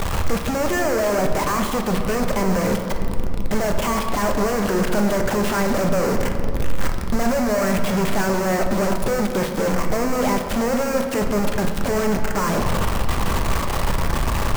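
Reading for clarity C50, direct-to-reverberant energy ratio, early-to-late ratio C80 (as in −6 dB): 5.5 dB, 3.5 dB, 7.0 dB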